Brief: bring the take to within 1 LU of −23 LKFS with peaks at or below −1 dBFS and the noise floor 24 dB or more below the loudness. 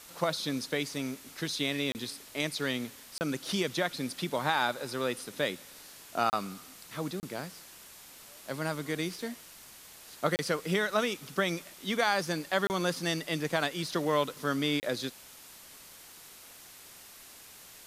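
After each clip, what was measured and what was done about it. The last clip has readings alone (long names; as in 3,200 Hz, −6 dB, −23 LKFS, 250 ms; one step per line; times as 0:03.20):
number of dropouts 7; longest dropout 29 ms; background noise floor −52 dBFS; target noise floor −56 dBFS; integrated loudness −32.0 LKFS; sample peak −12.0 dBFS; target loudness −23.0 LKFS
→ repair the gap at 0:01.92/0:03.18/0:06.30/0:07.20/0:10.36/0:12.67/0:14.80, 29 ms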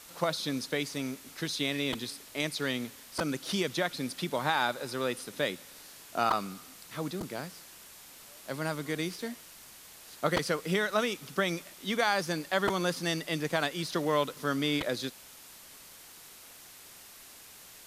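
number of dropouts 0; background noise floor −52 dBFS; target noise floor −56 dBFS
→ broadband denoise 6 dB, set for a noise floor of −52 dBFS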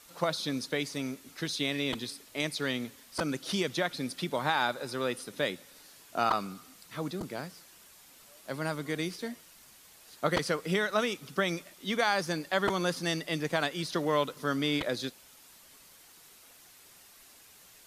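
background noise floor −56 dBFS; integrated loudness −32.0 LKFS; sample peak −12.0 dBFS; target loudness −23.0 LKFS
→ level +9 dB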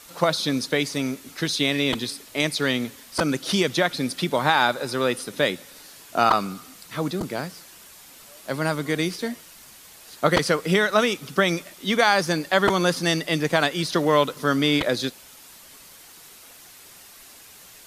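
integrated loudness −23.0 LKFS; sample peak −3.0 dBFS; background noise floor −47 dBFS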